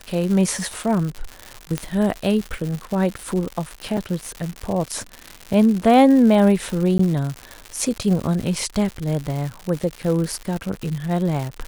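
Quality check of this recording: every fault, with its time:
crackle 190/s -25 dBFS
1.78 pop -9 dBFS
3.97–3.98 gap 5.1 ms
6.98–6.99 gap 14 ms

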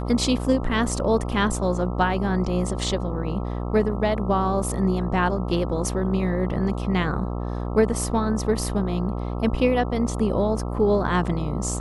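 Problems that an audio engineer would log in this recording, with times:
buzz 60 Hz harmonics 22 -28 dBFS

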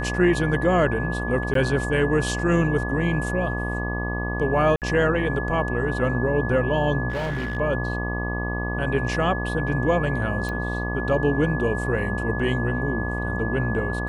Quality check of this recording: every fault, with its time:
buzz 60 Hz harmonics 20 -28 dBFS
tone 1700 Hz -30 dBFS
1.54–1.55 gap 13 ms
4.76–4.82 gap 58 ms
7.09–7.57 clipped -23.5 dBFS
10.49 pop -18 dBFS

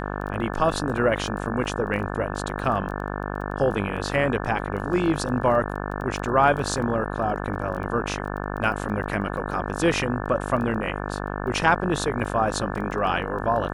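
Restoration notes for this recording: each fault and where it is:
buzz 50 Hz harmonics 35 -30 dBFS
crackle 10/s -32 dBFS

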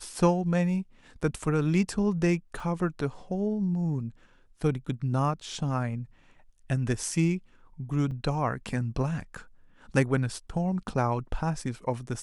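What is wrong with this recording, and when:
2.6 gap 3.1 ms
8.11 gap 4.3 ms

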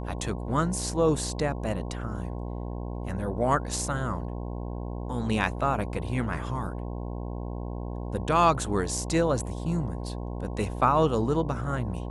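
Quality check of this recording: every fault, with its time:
buzz 60 Hz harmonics 18 -34 dBFS

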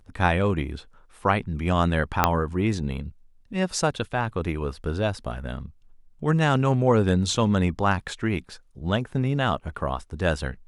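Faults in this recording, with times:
2.24 pop -3 dBFS

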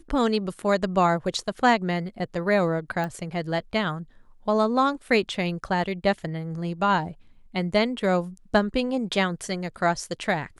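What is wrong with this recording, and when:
3.04 pop -18 dBFS

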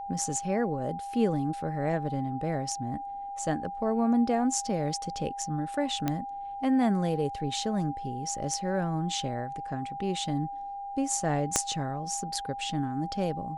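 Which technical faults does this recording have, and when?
tone 800 Hz -35 dBFS
6.08 pop -14 dBFS
11.56 pop -8 dBFS

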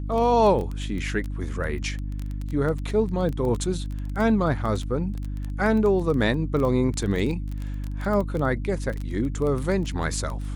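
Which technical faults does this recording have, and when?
crackle 14/s -27 dBFS
hum 50 Hz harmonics 6 -30 dBFS

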